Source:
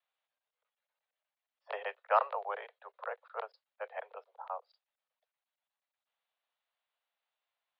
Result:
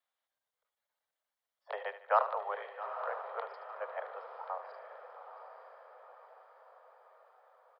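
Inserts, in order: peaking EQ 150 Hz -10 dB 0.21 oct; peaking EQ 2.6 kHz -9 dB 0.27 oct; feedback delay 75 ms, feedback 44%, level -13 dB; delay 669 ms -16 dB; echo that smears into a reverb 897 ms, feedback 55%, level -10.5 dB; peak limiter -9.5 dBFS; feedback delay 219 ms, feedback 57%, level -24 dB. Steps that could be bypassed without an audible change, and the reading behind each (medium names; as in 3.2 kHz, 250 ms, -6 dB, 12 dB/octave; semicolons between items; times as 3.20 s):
peaking EQ 150 Hz: input has nothing below 380 Hz; peak limiter -9.5 dBFS: peak at its input -13.5 dBFS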